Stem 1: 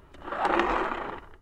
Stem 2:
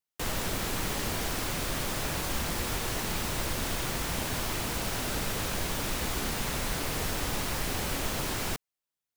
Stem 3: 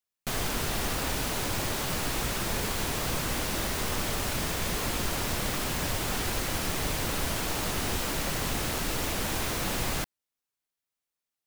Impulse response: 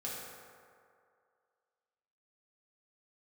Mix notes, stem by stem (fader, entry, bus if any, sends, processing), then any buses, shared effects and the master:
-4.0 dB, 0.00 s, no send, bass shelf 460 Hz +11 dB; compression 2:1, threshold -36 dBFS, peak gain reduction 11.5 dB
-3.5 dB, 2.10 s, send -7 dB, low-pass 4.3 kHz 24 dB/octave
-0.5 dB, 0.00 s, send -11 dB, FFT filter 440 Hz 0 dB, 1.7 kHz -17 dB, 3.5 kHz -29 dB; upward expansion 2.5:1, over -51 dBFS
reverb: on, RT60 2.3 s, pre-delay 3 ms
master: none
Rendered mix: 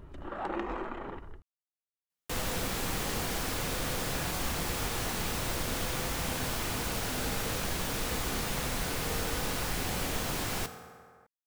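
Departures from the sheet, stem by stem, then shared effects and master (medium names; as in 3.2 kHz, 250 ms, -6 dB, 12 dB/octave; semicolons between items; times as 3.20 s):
stem 2: missing low-pass 4.3 kHz 24 dB/octave; stem 3: muted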